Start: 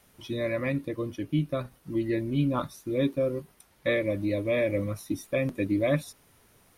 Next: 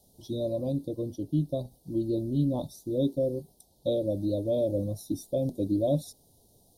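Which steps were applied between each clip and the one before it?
elliptic band-stop filter 770–3,900 Hz, stop band 50 dB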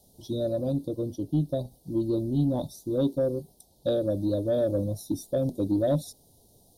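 soft clipping −17 dBFS, distortion −24 dB
level +2.5 dB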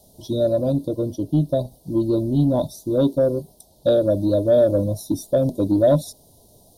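hollow resonant body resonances 630/1,000/1,400 Hz, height 8 dB
level +6.5 dB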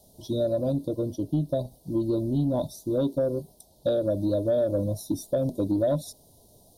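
downward compressor 3 to 1, threshold −18 dBFS, peak gain reduction 5.5 dB
level −4 dB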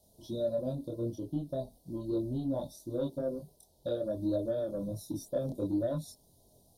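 multi-voice chorus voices 2, 0.46 Hz, delay 25 ms, depth 2.6 ms
level −5 dB

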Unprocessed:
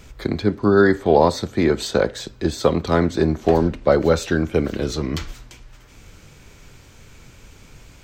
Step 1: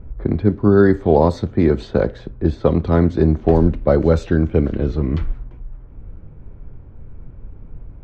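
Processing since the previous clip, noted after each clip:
low-pass that shuts in the quiet parts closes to 990 Hz, open at −11.5 dBFS
spectral tilt −3 dB per octave
level −2.5 dB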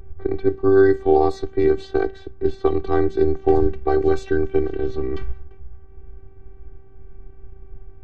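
phases set to zero 386 Hz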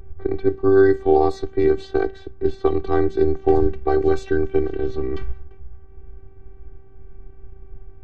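no processing that can be heard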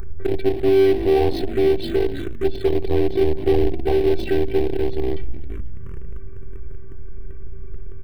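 echo with shifted repeats 245 ms, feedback 50%, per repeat −53 Hz, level −23.5 dB
power curve on the samples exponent 0.5
phaser swept by the level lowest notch 490 Hz, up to 1,300 Hz, full sweep at −10.5 dBFS
level −4 dB

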